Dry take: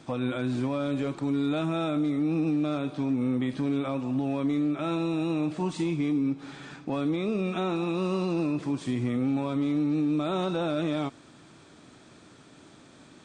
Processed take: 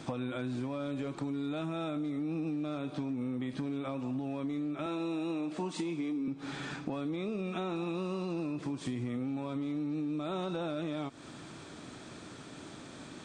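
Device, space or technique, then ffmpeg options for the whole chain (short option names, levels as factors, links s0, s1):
serial compression, peaks first: -filter_complex "[0:a]asettb=1/sr,asplit=3[s0][s1][s2];[s0]atrim=end=4.864[s3];[s1]atrim=start=4.86:end=6.28,asetpts=PTS-STARTPTS,afade=t=in:d=0.004:c=qsin,afade=t=out:st=1.416:d=0.004:c=qsin,highpass=f=190:w=0.5412,highpass=f=190:w=1.3066[s4];[s2]atrim=start=6.276[s5];[s3][s4]acrossfade=d=0.004:c1=hsin:c2=qsin[s6];[s6][s5]acrossfade=d=0.004:c1=qsin:c2=hsin,acompressor=threshold=0.02:ratio=6,acompressor=threshold=0.00631:ratio=1.5,volume=1.78"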